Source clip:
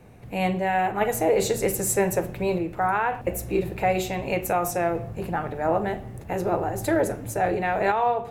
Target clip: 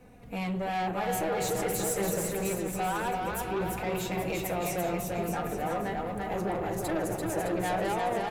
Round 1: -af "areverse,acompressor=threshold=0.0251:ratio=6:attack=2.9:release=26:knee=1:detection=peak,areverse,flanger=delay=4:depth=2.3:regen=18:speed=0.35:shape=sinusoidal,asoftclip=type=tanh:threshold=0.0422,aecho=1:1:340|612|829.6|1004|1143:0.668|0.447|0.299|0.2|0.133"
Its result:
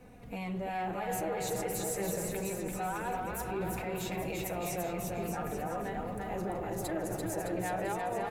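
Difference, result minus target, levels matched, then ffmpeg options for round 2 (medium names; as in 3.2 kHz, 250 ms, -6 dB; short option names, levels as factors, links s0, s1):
compression: peak gain reduction +8.5 dB
-af "areverse,acompressor=threshold=0.0794:ratio=6:attack=2.9:release=26:knee=1:detection=peak,areverse,flanger=delay=4:depth=2.3:regen=18:speed=0.35:shape=sinusoidal,asoftclip=type=tanh:threshold=0.0422,aecho=1:1:340|612|829.6|1004|1143:0.668|0.447|0.299|0.2|0.133"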